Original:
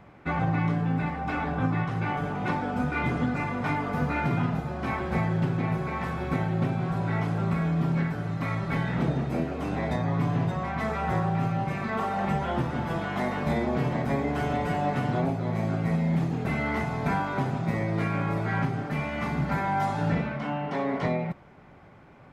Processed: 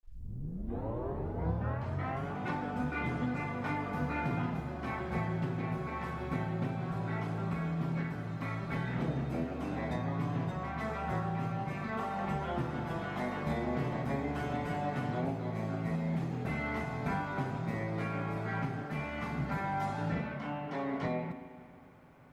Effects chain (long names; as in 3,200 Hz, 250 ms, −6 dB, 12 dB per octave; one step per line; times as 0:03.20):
turntable start at the beginning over 2.35 s
bit-depth reduction 12 bits, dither none
spring reverb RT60 2.3 s, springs 40/44/57 ms, chirp 50 ms, DRR 10 dB
level −7.5 dB